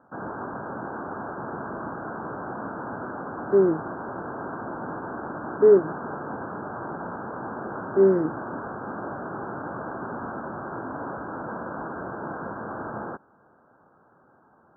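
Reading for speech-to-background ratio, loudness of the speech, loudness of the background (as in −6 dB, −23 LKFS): 13.5 dB, −21.0 LKFS, −34.5 LKFS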